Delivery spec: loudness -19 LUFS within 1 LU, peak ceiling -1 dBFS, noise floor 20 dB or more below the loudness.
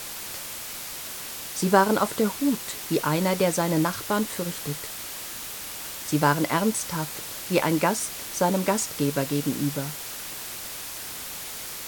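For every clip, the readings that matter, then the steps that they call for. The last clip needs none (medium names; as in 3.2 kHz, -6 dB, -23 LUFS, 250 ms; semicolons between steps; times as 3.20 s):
noise floor -36 dBFS; noise floor target -47 dBFS; loudness -26.5 LUFS; peak level -4.5 dBFS; loudness target -19.0 LUFS
-> noise print and reduce 11 dB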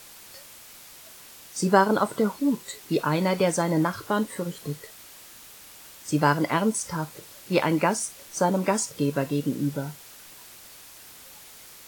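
noise floor -47 dBFS; loudness -25.5 LUFS; peak level -4.5 dBFS; loudness target -19.0 LUFS
-> trim +6.5 dB; peak limiter -1 dBFS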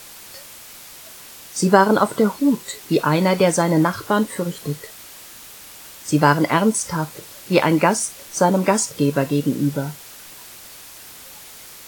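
loudness -19.0 LUFS; peak level -1.0 dBFS; noise floor -41 dBFS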